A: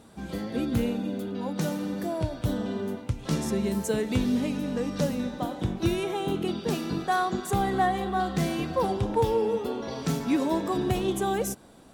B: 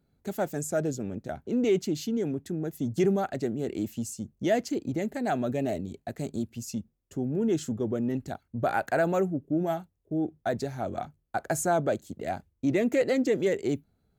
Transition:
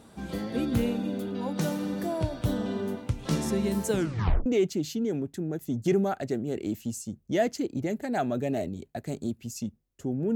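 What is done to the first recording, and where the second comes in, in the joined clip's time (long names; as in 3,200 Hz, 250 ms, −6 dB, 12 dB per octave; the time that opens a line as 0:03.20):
A
0:03.91: tape stop 0.55 s
0:04.46: continue with B from 0:01.58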